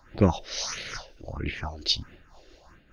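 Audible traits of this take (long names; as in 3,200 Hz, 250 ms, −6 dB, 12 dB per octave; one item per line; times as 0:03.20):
phaser sweep stages 4, 1.5 Hz, lowest notch 150–1,000 Hz
amplitude modulation by smooth noise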